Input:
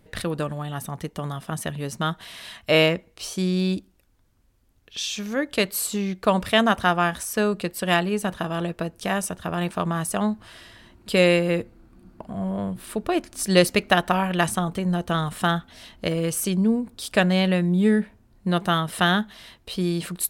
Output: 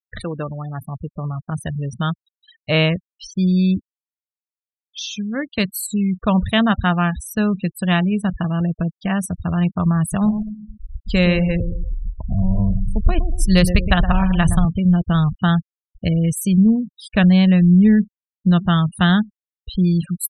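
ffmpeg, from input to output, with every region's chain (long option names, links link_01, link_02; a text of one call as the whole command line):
ffmpeg -i in.wav -filter_complex "[0:a]asettb=1/sr,asplit=3[link_01][link_02][link_03];[link_01]atrim=end=10.014[link_04];[link_02]atrim=start=10.01:end=14.65,asetpts=PTS-STARTPTS,afade=type=in:duration=0.004:curve=qsin,afade=type=out:start_time=4.636:duration=0.004:curve=qsin,asubboost=boost=7.5:cutoff=84,asplit=2[link_05][link_06];[link_06]adelay=117,lowpass=frequency=850:poles=1,volume=-7.5dB,asplit=2[link_07][link_08];[link_08]adelay=117,lowpass=frequency=850:poles=1,volume=0.48,asplit=2[link_09][link_10];[link_10]adelay=117,lowpass=frequency=850:poles=1,volume=0.48,asplit=2[link_11][link_12];[link_12]adelay=117,lowpass=frequency=850:poles=1,volume=0.48,asplit=2[link_13][link_14];[link_14]adelay=117,lowpass=frequency=850:poles=1,volume=0.48,asplit=2[link_15][link_16];[link_16]adelay=117,lowpass=frequency=850:poles=1,volume=0.48[link_17];[link_05][link_07][link_09][link_11][link_13][link_15][link_17]amix=inputs=7:normalize=0,atrim=end_sample=204624[link_18];[link_03]atrim=start=14.646[link_19];[link_04][link_18]acrossfade=duration=0.004:curve1=hsin:curve2=qsin[link_20];[link_20][link_19]acrossfade=duration=0.004:curve1=qsin:curve2=hsin,afftfilt=real='re*gte(hypot(re,im),0.0447)':imag='im*gte(hypot(re,im),0.0447)':win_size=1024:overlap=0.75,asubboost=boost=8.5:cutoff=140,volume=1dB" out.wav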